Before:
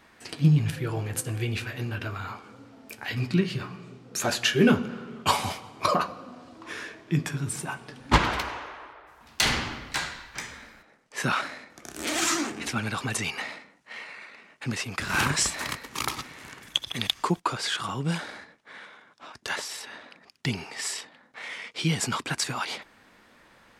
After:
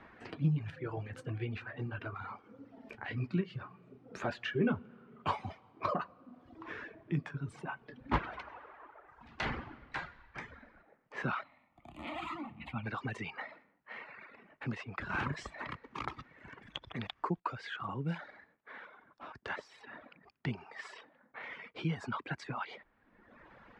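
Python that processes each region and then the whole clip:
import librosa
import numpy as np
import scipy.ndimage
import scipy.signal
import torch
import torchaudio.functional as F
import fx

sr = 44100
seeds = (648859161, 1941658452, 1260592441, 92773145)

y = fx.chain(x, sr, fx.fixed_phaser(hz=1600.0, stages=6),
    fx.resample_bad(factor=2, down='none', up='zero_stuff'), at=(11.43, 12.86))
y = scipy.signal.sosfilt(scipy.signal.butter(2, 1900.0, 'lowpass', fs=sr, output='sos'), y)
y = fx.dereverb_blind(y, sr, rt60_s=1.1)
y = fx.band_squash(y, sr, depth_pct=40)
y = y * 10.0 ** (-6.5 / 20.0)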